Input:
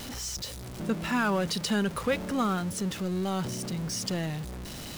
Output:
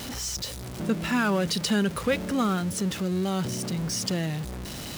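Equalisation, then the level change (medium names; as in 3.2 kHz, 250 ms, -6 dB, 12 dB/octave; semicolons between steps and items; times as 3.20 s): high-pass 41 Hz; dynamic bell 950 Hz, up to -4 dB, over -41 dBFS, Q 1.2; +3.5 dB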